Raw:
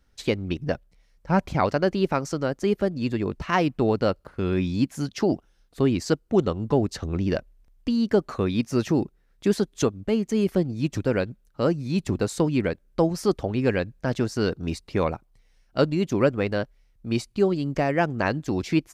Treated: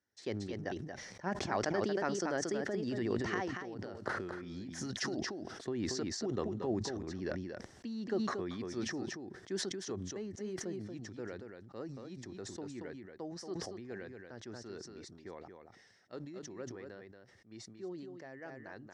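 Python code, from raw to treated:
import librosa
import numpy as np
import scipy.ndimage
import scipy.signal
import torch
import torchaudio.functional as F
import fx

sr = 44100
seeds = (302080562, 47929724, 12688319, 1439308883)

y = fx.doppler_pass(x, sr, speed_mps=16, closest_m=2.8, pass_at_s=4.06)
y = fx.over_compress(y, sr, threshold_db=-43.0, ratio=-1.0)
y = fx.cabinet(y, sr, low_hz=100.0, low_slope=24, high_hz=8300.0, hz=(150.0, 370.0, 760.0, 1800.0, 2500.0, 5600.0), db=(-8, 6, 4, 10, -6, 7))
y = y + 10.0 ** (-7.0 / 20.0) * np.pad(y, (int(231 * sr / 1000.0), 0))[:len(y)]
y = fx.sustainer(y, sr, db_per_s=36.0)
y = y * 10.0 ** (3.0 / 20.0)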